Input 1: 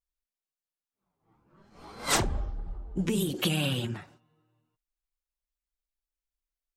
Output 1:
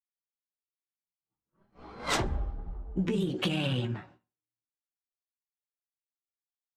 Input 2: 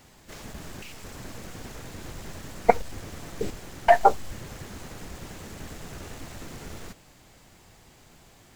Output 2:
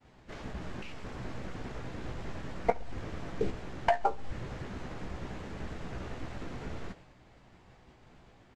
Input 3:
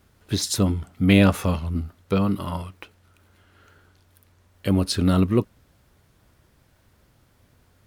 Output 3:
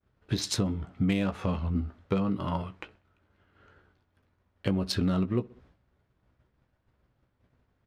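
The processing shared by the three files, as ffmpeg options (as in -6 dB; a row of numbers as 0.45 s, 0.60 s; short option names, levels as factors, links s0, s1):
-filter_complex "[0:a]agate=range=0.0224:threshold=0.00316:ratio=3:detection=peak,asplit=2[s0][s1];[s1]adelay=16,volume=0.376[s2];[s0][s2]amix=inputs=2:normalize=0,aecho=1:1:64|128|192:0.0631|0.0259|0.0106,adynamicsmooth=sensitivity=2:basefreq=3200,aresample=32000,aresample=44100,acompressor=threshold=0.0631:ratio=6"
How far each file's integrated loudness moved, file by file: -2.0 LU, -12.5 LU, -7.5 LU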